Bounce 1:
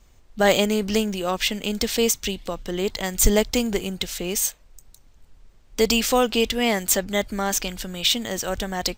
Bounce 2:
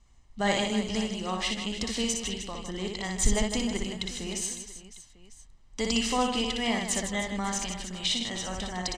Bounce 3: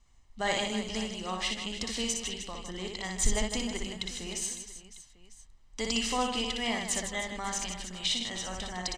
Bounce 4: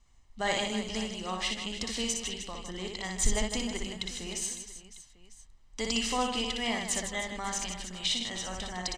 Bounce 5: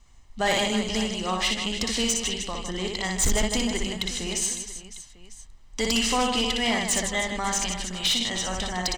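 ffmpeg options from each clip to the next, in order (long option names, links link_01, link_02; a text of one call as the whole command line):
ffmpeg -i in.wav -filter_complex "[0:a]lowpass=frequency=9100:width=0.5412,lowpass=frequency=9100:width=1.3066,aecho=1:1:1:0.46,asplit=2[link_01][link_02];[link_02]aecho=0:1:60|156|309.6|555.4|948.6:0.631|0.398|0.251|0.158|0.1[link_03];[link_01][link_03]amix=inputs=2:normalize=0,volume=-9dB" out.wav
ffmpeg -i in.wav -af "equalizer=frequency=230:width_type=o:width=3:gain=-3.5,bandreject=frequency=50:width_type=h:width=6,bandreject=frequency=100:width_type=h:width=6,bandreject=frequency=150:width_type=h:width=6,bandreject=frequency=200:width_type=h:width=6,volume=-1.5dB" out.wav
ffmpeg -i in.wav -af anull out.wav
ffmpeg -i in.wav -af "aeval=exprs='0.237*sin(PI/2*2.82*val(0)/0.237)':channel_layout=same,volume=-4.5dB" out.wav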